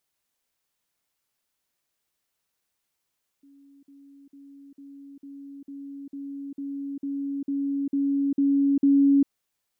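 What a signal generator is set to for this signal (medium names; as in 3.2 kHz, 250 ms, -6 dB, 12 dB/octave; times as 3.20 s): level ladder 279 Hz -51 dBFS, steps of 3 dB, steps 13, 0.40 s 0.05 s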